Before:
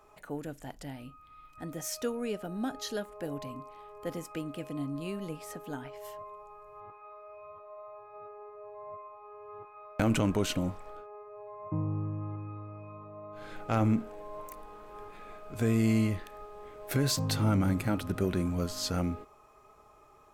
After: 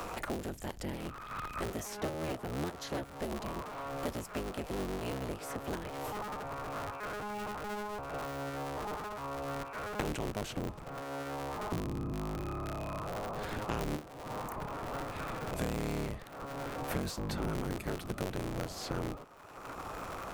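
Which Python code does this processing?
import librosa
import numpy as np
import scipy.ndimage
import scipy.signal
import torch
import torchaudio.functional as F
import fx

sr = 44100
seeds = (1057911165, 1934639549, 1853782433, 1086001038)

y = fx.cycle_switch(x, sr, every=3, mode='inverted')
y = fx.peak_eq(y, sr, hz=550.0, db=2.0, octaves=2.7)
y = fx.band_squash(y, sr, depth_pct=100)
y = y * librosa.db_to_amplitude(-5.0)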